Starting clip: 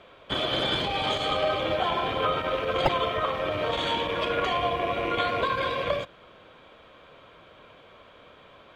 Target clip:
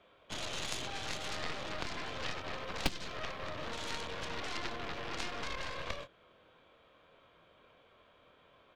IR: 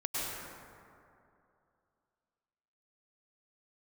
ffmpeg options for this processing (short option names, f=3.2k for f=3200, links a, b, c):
-filter_complex "[0:a]asplit=2[a][b];[b]adelay=24,volume=-7dB[c];[a][c]amix=inputs=2:normalize=0,aeval=exprs='0.335*(cos(1*acos(clip(val(0)/0.335,-1,1)))-cos(1*PI/2))+0.133*(cos(3*acos(clip(val(0)/0.335,-1,1)))-cos(3*PI/2))+0.0106*(cos(8*acos(clip(val(0)/0.335,-1,1)))-cos(8*PI/2))':c=same,acrossover=split=290|3000[d][e][f];[e]acompressor=threshold=-40dB:ratio=6[g];[d][g][f]amix=inputs=3:normalize=0,volume=1.5dB"